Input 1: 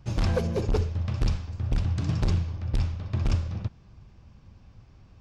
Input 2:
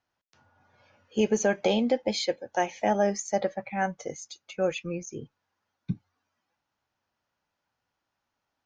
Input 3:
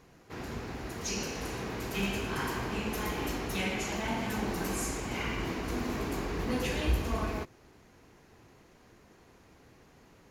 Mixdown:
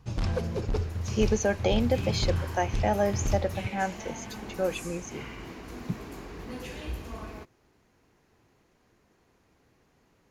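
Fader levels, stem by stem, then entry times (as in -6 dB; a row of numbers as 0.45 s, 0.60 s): -4.0 dB, -1.5 dB, -7.5 dB; 0.00 s, 0.00 s, 0.00 s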